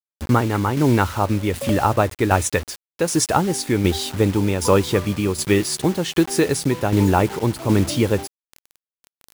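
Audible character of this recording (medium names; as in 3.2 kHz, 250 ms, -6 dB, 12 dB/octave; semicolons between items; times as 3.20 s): a quantiser's noise floor 6-bit, dither none; tremolo saw down 1.3 Hz, depth 50%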